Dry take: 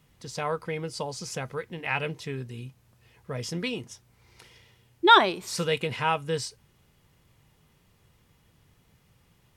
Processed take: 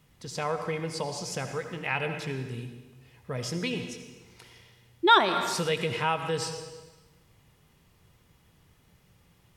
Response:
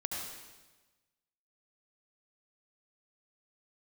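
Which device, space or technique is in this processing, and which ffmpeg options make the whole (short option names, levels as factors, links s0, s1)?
ducked reverb: -filter_complex "[0:a]asplit=3[s0][s1][s2];[1:a]atrim=start_sample=2205[s3];[s1][s3]afir=irnorm=-1:irlink=0[s4];[s2]apad=whole_len=421787[s5];[s4][s5]sidechaincompress=threshold=0.0355:ratio=8:attack=16:release=141,volume=0.668[s6];[s0][s6]amix=inputs=2:normalize=0,volume=0.668"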